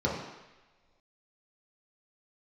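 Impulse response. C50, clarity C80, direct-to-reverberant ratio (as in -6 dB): 2.5 dB, 5.5 dB, -5.0 dB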